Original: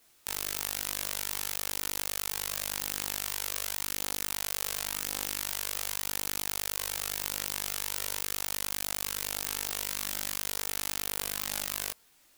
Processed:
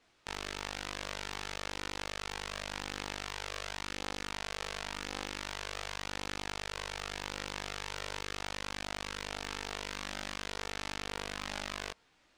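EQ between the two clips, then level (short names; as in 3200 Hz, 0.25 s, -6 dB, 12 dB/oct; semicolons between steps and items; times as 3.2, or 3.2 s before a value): air absorption 110 m; high shelf 4900 Hz -6.5 dB; +2.0 dB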